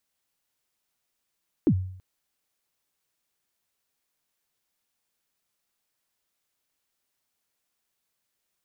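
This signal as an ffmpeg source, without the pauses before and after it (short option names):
-f lavfi -i "aevalsrc='0.2*pow(10,-3*t/0.63)*sin(2*PI*(370*0.069/log(93/370)*(exp(log(93/370)*min(t,0.069)/0.069)-1)+93*max(t-0.069,0)))':d=0.33:s=44100"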